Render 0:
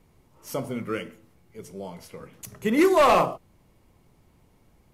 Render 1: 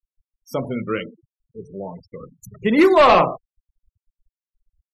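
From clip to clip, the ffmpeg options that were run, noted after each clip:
-af "afftfilt=real='re*gte(hypot(re,im),0.0158)':imag='im*gte(hypot(re,im),0.0158)':win_size=1024:overlap=0.75,highshelf=f=5600:t=q:w=1.5:g=-6.5,volume=1.88"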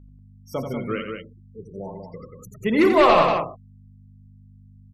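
-af "aeval=exprs='val(0)+0.00794*(sin(2*PI*50*n/s)+sin(2*PI*2*50*n/s)/2+sin(2*PI*3*50*n/s)/3+sin(2*PI*4*50*n/s)/4+sin(2*PI*5*50*n/s)/5)':c=same,aecho=1:1:87.46|189.5:0.447|0.501,volume=0.631"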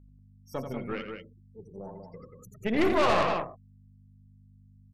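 -af "aeval=exprs='(tanh(6.31*val(0)+0.75)-tanh(0.75))/6.31':c=same,volume=0.708"

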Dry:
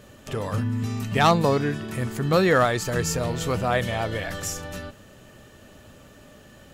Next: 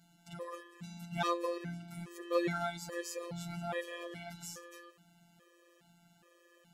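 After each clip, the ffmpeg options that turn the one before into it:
-af "highpass=130,afftfilt=real='hypot(re,im)*cos(PI*b)':imag='0':win_size=1024:overlap=0.75,afftfilt=real='re*gt(sin(2*PI*1.2*pts/sr)*(1-2*mod(floor(b*sr/1024/330),2)),0)':imag='im*gt(sin(2*PI*1.2*pts/sr)*(1-2*mod(floor(b*sr/1024/330),2)),0)':win_size=1024:overlap=0.75,volume=0.398"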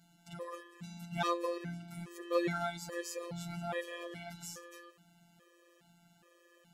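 -af anull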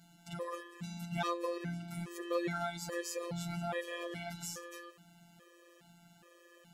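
-af "acompressor=threshold=0.01:ratio=2,volume=1.58"

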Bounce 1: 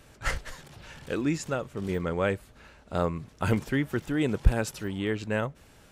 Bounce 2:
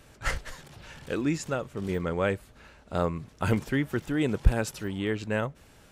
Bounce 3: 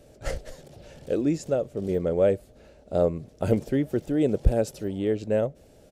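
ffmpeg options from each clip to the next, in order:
-af anull
-af "firequalizer=gain_entry='entry(120,0);entry(590,9);entry(990,-11);entry(4800,-3)':delay=0.05:min_phase=1"

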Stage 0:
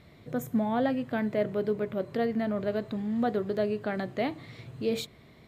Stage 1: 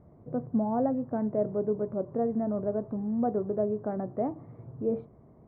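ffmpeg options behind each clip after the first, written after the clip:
-af "lowpass=f=1000:w=0.5412,lowpass=f=1000:w=1.3066"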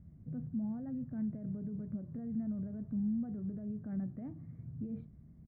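-af "equalizer=f=120:w=3.1:g=-8,alimiter=level_in=1.58:limit=0.0631:level=0:latency=1:release=37,volume=0.631,firequalizer=gain_entry='entry(160,0);entry(400,-24);entry(1000,-27);entry(1600,-12)':delay=0.05:min_phase=1,volume=1.78"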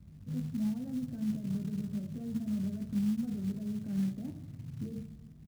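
-filter_complex "[0:a]acrossover=split=260|500[s0][s1][s2];[s2]alimiter=level_in=59.6:limit=0.0631:level=0:latency=1,volume=0.0168[s3];[s0][s1][s3]amix=inputs=3:normalize=0,aecho=1:1:20|52|103.2|185.1|316.2:0.631|0.398|0.251|0.158|0.1,acrusher=bits=6:mode=log:mix=0:aa=0.000001,volume=1.12"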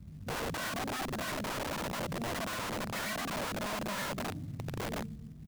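-af "aeval=exprs='(mod(63.1*val(0)+1,2)-1)/63.1':c=same,volume=1.68"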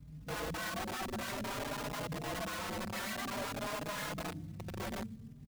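-filter_complex "[0:a]asplit=2[s0][s1];[s1]adelay=4.4,afreqshift=0.53[s2];[s0][s2]amix=inputs=2:normalize=1"

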